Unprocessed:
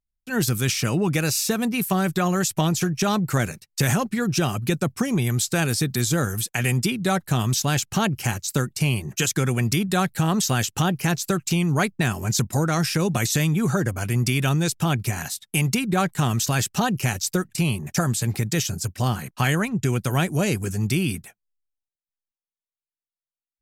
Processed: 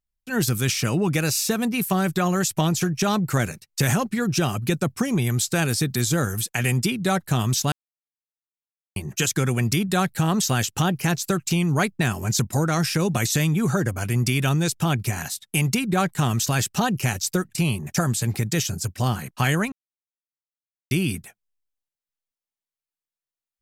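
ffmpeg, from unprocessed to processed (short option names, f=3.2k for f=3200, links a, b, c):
-filter_complex "[0:a]asplit=5[a][b][c][d][e];[a]atrim=end=7.72,asetpts=PTS-STARTPTS,afade=t=out:st=7.716:d=0.004:c=hsin[f];[b]atrim=start=7.72:end=8.96,asetpts=PTS-STARTPTS,volume=0[g];[c]atrim=start=8.96:end=19.72,asetpts=PTS-STARTPTS,afade=t=in:d=0.004:c=hsin,afade=t=out:st=10.756:d=0.004:c=hsin[h];[d]atrim=start=19.72:end=20.91,asetpts=PTS-STARTPTS,volume=0[i];[e]atrim=start=20.91,asetpts=PTS-STARTPTS,afade=t=in:d=0.004:c=hsin[j];[f][g][h][i][j]concat=n=5:v=0:a=1"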